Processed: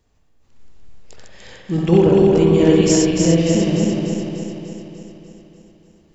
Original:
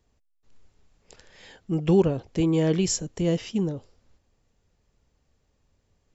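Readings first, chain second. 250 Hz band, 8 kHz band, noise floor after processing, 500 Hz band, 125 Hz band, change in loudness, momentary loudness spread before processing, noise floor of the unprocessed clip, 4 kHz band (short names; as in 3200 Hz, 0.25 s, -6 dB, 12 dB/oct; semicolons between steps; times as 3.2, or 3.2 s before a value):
+10.5 dB, n/a, -57 dBFS, +11.0 dB, +9.0 dB, +9.5 dB, 9 LU, -71 dBFS, +9.5 dB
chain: regenerating reverse delay 0.148 s, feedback 76%, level -2 dB; spring tank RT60 1.1 s, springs 54 ms, chirp 25 ms, DRR 1.5 dB; gain +4.5 dB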